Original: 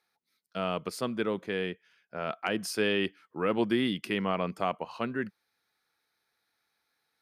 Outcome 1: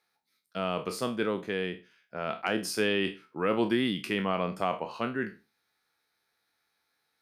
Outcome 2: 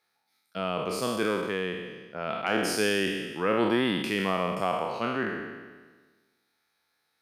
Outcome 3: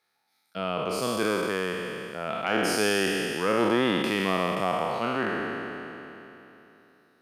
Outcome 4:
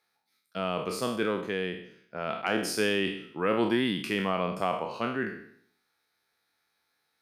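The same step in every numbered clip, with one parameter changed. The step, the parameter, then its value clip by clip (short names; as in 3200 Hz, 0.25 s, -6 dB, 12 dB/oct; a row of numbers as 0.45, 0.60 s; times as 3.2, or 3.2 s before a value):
spectral trails, RT60: 0.3, 1.41, 3.14, 0.64 s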